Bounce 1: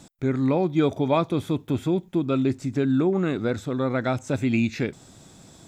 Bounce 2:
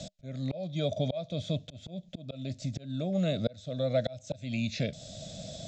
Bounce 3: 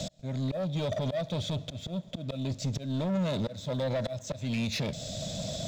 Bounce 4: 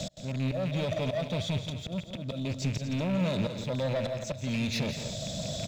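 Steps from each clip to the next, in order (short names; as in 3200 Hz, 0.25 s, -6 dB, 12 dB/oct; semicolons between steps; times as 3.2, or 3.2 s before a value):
EQ curve 190 Hz 0 dB, 380 Hz -18 dB, 620 Hz +12 dB, 890 Hz -22 dB, 2400 Hz -4 dB, 3700 Hz +7 dB, 7000 Hz +2 dB, 11000 Hz -28 dB; auto swell 0.721 s; three-band squash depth 40%; gain +2 dB
limiter -25 dBFS, peak gain reduction 10 dB; sample leveller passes 2; on a send at -22 dB: reverb RT60 4.5 s, pre-delay 88 ms
rattling part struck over -32 dBFS, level -32 dBFS; on a send: loudspeakers at several distances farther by 58 m -9 dB, 82 m -12 dB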